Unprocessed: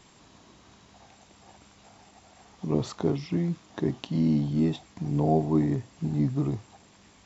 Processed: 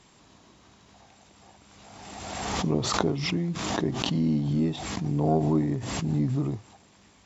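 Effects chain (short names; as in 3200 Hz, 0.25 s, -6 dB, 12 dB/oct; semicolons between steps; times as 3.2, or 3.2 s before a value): added harmonics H 2 -20 dB, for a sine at -10 dBFS; backwards sustainer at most 30 dB/s; gain -1.5 dB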